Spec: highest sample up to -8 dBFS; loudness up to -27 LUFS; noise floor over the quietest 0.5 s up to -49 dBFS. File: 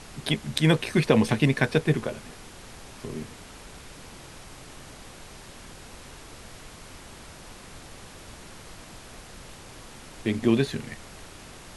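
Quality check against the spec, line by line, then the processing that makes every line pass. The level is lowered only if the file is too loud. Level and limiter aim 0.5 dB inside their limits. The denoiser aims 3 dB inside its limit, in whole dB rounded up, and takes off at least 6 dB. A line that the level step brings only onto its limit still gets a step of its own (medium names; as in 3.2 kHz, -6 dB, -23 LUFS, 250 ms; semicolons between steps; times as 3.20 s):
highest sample -5.0 dBFS: fail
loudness -25.0 LUFS: fail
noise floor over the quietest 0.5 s -45 dBFS: fail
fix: noise reduction 6 dB, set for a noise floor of -45 dBFS; trim -2.5 dB; peak limiter -8.5 dBFS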